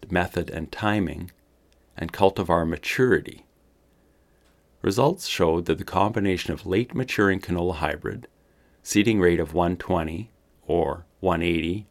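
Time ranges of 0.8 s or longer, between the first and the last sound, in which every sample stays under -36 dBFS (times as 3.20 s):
3.39–4.84 s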